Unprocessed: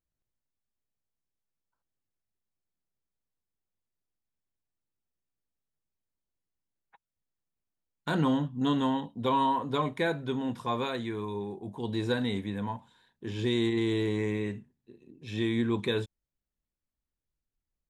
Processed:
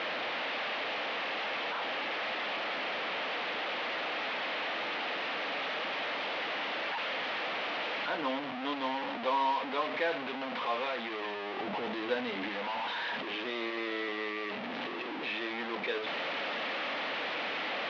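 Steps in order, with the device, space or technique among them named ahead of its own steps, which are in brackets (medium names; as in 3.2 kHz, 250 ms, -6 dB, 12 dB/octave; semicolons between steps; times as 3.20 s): digital answering machine (band-pass 340–3200 Hz; one-bit delta coder 32 kbps, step -27 dBFS; cabinet simulation 380–3300 Hz, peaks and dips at 380 Hz -9 dB, 1 kHz -4 dB, 1.5 kHz -4 dB); 11.56–12.49 s: bass shelf 200 Hz +10 dB; trim +1.5 dB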